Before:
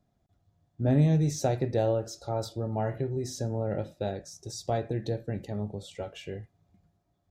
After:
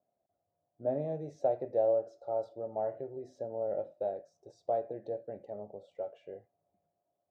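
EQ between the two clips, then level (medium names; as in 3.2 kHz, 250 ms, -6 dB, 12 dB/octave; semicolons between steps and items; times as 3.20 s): band-pass filter 600 Hz, Q 3.3; +1.5 dB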